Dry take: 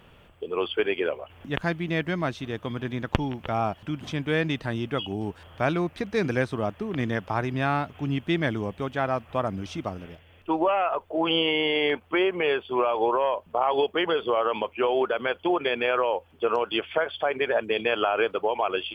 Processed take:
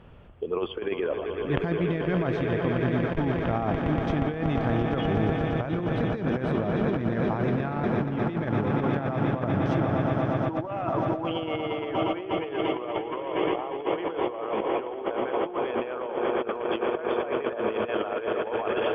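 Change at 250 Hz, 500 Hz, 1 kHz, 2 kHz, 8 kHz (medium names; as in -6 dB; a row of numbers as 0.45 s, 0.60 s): +2.5 dB, -1.5 dB, -3.0 dB, -5.5 dB, no reading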